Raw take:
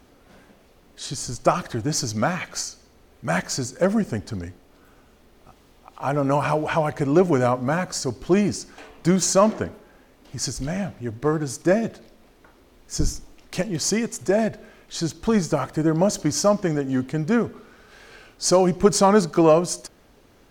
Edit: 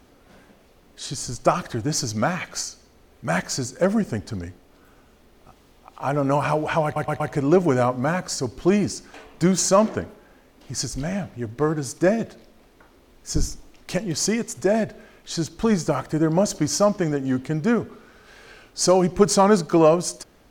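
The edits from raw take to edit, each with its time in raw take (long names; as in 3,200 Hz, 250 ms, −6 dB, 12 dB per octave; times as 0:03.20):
0:06.84: stutter 0.12 s, 4 plays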